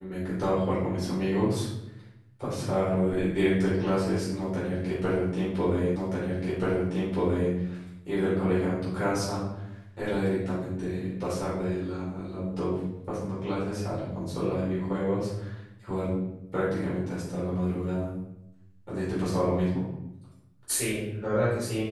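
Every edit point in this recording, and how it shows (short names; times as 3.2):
5.96 repeat of the last 1.58 s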